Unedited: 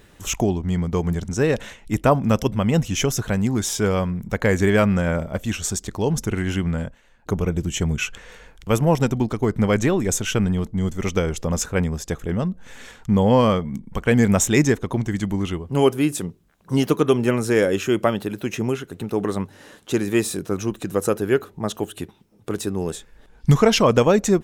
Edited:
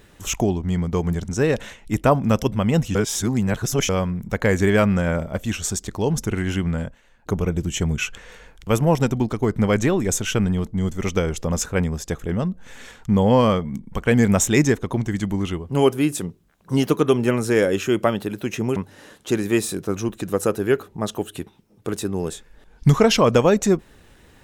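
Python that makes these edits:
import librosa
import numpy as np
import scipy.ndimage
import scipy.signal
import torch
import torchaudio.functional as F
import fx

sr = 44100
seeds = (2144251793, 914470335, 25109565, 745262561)

y = fx.edit(x, sr, fx.reverse_span(start_s=2.95, length_s=0.94),
    fx.cut(start_s=18.76, length_s=0.62), tone=tone)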